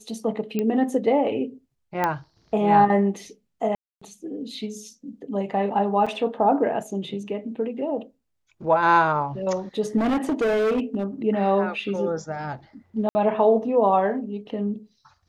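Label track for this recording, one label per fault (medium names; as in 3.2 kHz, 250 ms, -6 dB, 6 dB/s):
0.590000	0.590000	pop -13 dBFS
2.040000	2.040000	pop -10 dBFS
3.750000	4.010000	dropout 265 ms
6.060000	6.070000	dropout 5.6 ms
9.970000	11.040000	clipped -19 dBFS
13.090000	13.150000	dropout 60 ms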